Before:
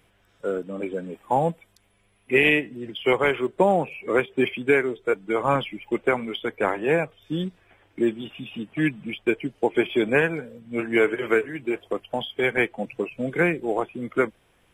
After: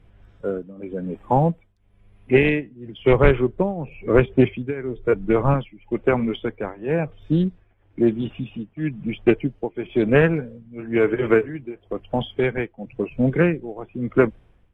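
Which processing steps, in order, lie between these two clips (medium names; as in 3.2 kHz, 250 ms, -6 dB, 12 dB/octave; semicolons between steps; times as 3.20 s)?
RIAA curve playback; tremolo triangle 1 Hz, depth 90%; 3.06–5.54 s: bass shelf 110 Hz +11 dB; loudspeaker Doppler distortion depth 0.21 ms; trim +3 dB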